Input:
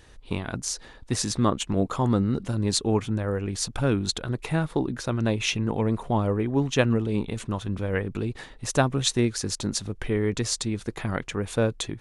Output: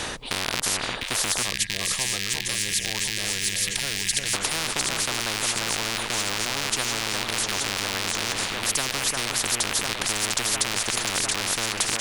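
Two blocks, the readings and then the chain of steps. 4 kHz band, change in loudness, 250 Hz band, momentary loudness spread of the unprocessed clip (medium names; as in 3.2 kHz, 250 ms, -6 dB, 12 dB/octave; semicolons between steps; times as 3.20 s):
+8.5 dB, +2.5 dB, -11.5 dB, 8 LU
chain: rattle on loud lows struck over -37 dBFS, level -19 dBFS; echo whose repeats swap between lows and highs 351 ms, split 1.9 kHz, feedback 75%, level -8 dB; time-frequency box 1.42–4.34 s, 210–1600 Hz -28 dB; reverse; upward compressor, threshold -25 dBFS; reverse; spectrum-flattening compressor 10:1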